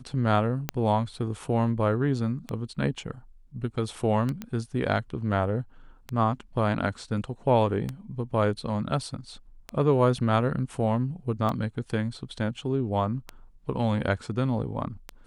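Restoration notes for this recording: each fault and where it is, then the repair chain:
scratch tick 33 1/3 rpm −17 dBFS
0:00.69: click −17 dBFS
0:04.42: click −20 dBFS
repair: click removal

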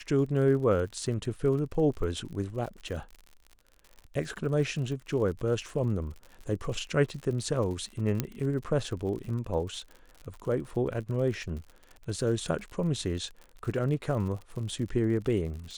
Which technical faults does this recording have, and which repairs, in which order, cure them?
surface crackle 60 per second −38 dBFS
0:08.20: click −13 dBFS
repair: click removal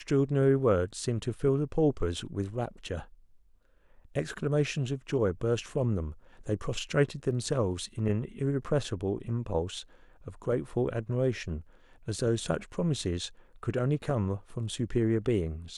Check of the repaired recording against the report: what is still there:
0:08.20: click

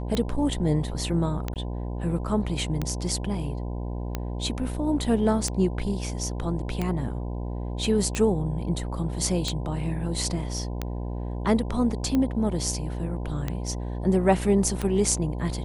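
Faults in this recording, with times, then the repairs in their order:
mains buzz 60 Hz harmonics 17 −31 dBFS
scratch tick 45 rpm −14 dBFS
0:01.54–0:01.56: drop-out 18 ms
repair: click removal
hum removal 60 Hz, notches 17
repair the gap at 0:01.54, 18 ms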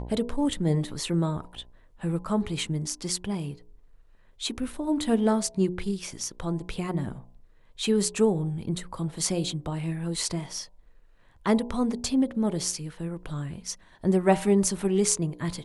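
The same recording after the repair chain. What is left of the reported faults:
none of them is left

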